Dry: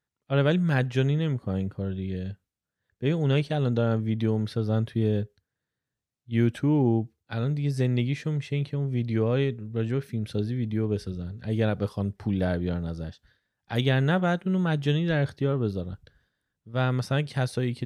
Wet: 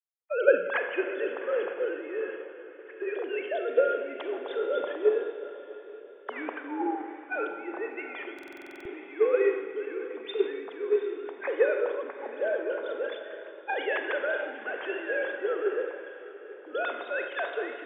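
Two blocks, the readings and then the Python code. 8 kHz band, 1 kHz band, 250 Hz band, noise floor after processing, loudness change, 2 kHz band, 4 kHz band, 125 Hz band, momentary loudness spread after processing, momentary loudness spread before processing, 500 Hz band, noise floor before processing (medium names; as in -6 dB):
no reading, +0.5 dB, -12.0 dB, -47 dBFS, -3.5 dB, +3.5 dB, -7.5 dB, under -40 dB, 16 LU, 8 LU, +3.0 dB, under -85 dBFS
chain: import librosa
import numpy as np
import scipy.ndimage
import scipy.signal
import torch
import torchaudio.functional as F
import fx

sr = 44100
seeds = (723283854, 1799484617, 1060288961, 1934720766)

p1 = fx.sine_speech(x, sr)
p2 = fx.recorder_agc(p1, sr, target_db=-19.5, rise_db_per_s=33.0, max_gain_db=30)
p3 = fx.rev_schroeder(p2, sr, rt60_s=2.2, comb_ms=32, drr_db=3.5)
p4 = fx.level_steps(p3, sr, step_db=10)
p5 = p3 + (p4 * 10.0 ** (2.0 / 20.0))
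p6 = scipy.signal.sosfilt(scipy.signal.butter(6, 400.0, 'highpass', fs=sr, output='sos'), p5)
p7 = fx.echo_diffused(p6, sr, ms=779, feedback_pct=52, wet_db=-9.5)
p8 = fx.buffer_glitch(p7, sr, at_s=(8.34,), block=2048, repeats=10)
p9 = fx.band_widen(p8, sr, depth_pct=70)
y = p9 * 10.0 ** (-8.0 / 20.0)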